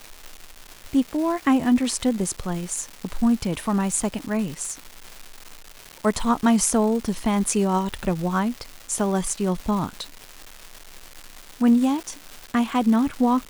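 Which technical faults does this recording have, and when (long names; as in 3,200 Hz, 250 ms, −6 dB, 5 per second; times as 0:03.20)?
surface crackle 510 per second −30 dBFS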